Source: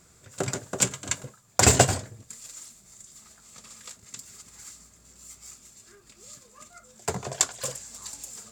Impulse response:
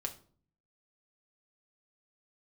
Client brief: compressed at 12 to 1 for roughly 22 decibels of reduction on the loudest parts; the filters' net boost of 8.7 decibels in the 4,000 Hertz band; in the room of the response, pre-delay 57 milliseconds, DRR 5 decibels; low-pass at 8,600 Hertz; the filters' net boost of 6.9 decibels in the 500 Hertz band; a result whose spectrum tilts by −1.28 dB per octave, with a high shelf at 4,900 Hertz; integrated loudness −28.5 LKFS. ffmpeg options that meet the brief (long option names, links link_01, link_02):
-filter_complex "[0:a]lowpass=8600,equalizer=frequency=500:width_type=o:gain=8.5,equalizer=frequency=4000:width_type=o:gain=7,highshelf=frequency=4900:gain=8,acompressor=threshold=-32dB:ratio=12,asplit=2[link_01][link_02];[1:a]atrim=start_sample=2205,adelay=57[link_03];[link_02][link_03]afir=irnorm=-1:irlink=0,volume=-5dB[link_04];[link_01][link_04]amix=inputs=2:normalize=0,volume=8.5dB"